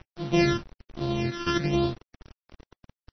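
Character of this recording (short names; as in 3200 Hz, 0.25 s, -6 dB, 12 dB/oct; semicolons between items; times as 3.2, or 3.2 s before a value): a buzz of ramps at a fixed pitch in blocks of 128 samples; phasing stages 12, 1.2 Hz, lowest notch 680–2000 Hz; a quantiser's noise floor 8-bit, dither none; MP3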